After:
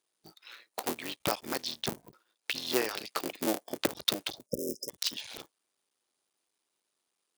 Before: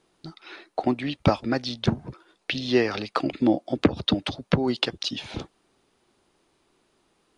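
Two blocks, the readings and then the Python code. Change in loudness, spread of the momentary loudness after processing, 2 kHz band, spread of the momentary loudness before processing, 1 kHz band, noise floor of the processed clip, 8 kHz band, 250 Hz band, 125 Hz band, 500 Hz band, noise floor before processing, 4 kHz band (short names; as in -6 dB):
-8.0 dB, 14 LU, -6.5 dB, 17 LU, -8.5 dB, -83 dBFS, +7.5 dB, -14.0 dB, -19.5 dB, -9.0 dB, -69 dBFS, -4.0 dB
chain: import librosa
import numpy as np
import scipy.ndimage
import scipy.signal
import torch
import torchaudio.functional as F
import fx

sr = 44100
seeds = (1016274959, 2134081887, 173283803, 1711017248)

y = fx.cycle_switch(x, sr, every=3, mode='muted')
y = fx.riaa(y, sr, side='recording')
y = fx.spec_erase(y, sr, start_s=4.46, length_s=0.43, low_hz=610.0, high_hz=5000.0)
y = fx.dynamic_eq(y, sr, hz=420.0, q=1.0, threshold_db=-35.0, ratio=4.0, max_db=4)
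y = fx.noise_reduce_blind(y, sr, reduce_db=9)
y = y * librosa.db_to_amplitude(-8.0)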